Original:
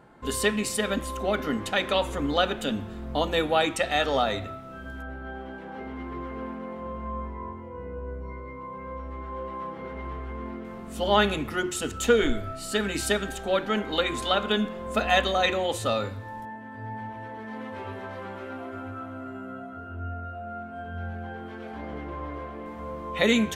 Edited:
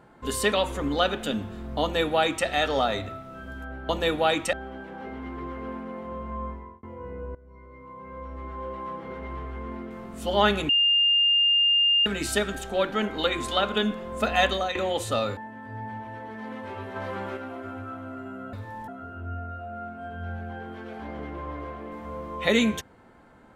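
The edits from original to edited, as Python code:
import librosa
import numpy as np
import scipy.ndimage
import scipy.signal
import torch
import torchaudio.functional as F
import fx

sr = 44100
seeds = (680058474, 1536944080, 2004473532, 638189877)

y = fx.edit(x, sr, fx.cut(start_s=0.52, length_s=1.38),
    fx.duplicate(start_s=3.2, length_s=0.64, to_s=5.27),
    fx.fade_out_span(start_s=7.22, length_s=0.35),
    fx.fade_in_from(start_s=8.09, length_s=1.12, floor_db=-19.5),
    fx.bleep(start_s=11.43, length_s=1.37, hz=2810.0, db=-17.5),
    fx.fade_out_to(start_s=15.21, length_s=0.28, curve='qsin', floor_db=-13.0),
    fx.move(start_s=16.11, length_s=0.35, to_s=19.62),
    fx.clip_gain(start_s=18.05, length_s=0.41, db=4.5), tone=tone)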